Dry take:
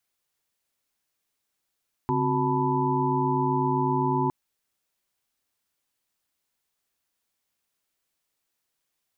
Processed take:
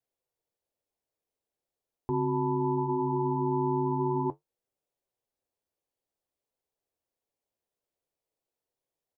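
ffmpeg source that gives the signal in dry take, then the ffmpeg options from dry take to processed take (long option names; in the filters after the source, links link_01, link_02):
-f lavfi -i "aevalsrc='0.0398*(sin(2*PI*138.59*t)+sin(2*PI*261.63*t)+sin(2*PI*369.99*t)+sin(2*PI*880*t)+sin(2*PI*987.77*t))':duration=2.21:sample_rate=44100"
-af "flanger=delay=7.1:depth=9:regen=-58:speed=0.41:shape=sinusoidal,firequalizer=gain_entry='entry(130,0);entry(190,-4);entry(470,7);entry(1300,-10)':delay=0.05:min_phase=1"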